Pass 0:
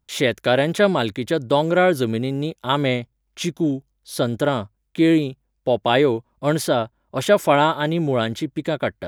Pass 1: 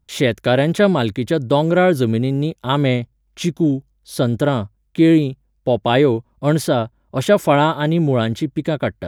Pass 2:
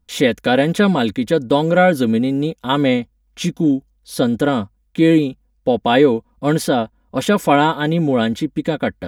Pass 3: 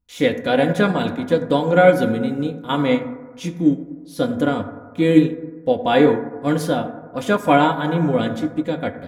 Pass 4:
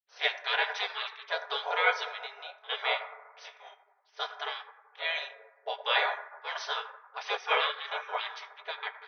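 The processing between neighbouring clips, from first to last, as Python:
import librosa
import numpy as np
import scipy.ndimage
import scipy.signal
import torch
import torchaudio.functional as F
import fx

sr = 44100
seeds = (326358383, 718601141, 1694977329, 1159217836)

y1 = fx.low_shelf(x, sr, hz=280.0, db=8.5)
y2 = y1 + 0.65 * np.pad(y1, (int(4.1 * sr / 1000.0), 0))[:len(y1)]
y3 = fx.rev_fdn(y2, sr, rt60_s=1.8, lf_ratio=0.9, hf_ratio=0.25, size_ms=58.0, drr_db=3.5)
y3 = fx.upward_expand(y3, sr, threshold_db=-25.0, expansion=1.5)
y3 = F.gain(torch.from_numpy(y3), -1.0).numpy()
y4 = fx.brickwall_bandpass(y3, sr, low_hz=440.0, high_hz=6200.0)
y4 = fx.env_lowpass(y4, sr, base_hz=2500.0, full_db=-15.0)
y4 = fx.spec_gate(y4, sr, threshold_db=-15, keep='weak')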